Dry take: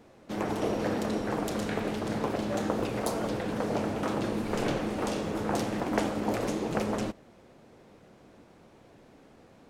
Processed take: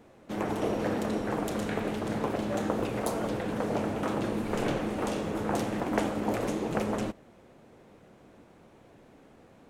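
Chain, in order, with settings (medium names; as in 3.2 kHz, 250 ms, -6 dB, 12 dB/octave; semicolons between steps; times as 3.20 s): peaking EQ 4.9 kHz -4.5 dB 0.73 oct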